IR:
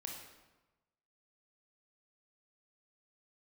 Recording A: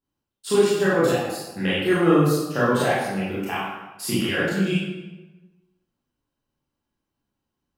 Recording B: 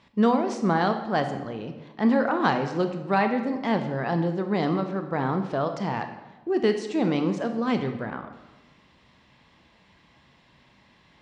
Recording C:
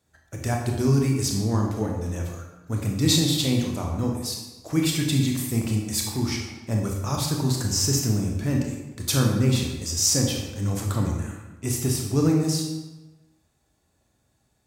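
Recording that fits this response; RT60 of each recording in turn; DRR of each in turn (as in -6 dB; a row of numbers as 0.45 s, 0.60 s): C; 1.1 s, 1.1 s, 1.1 s; -9.5 dB, 6.5 dB, 0.0 dB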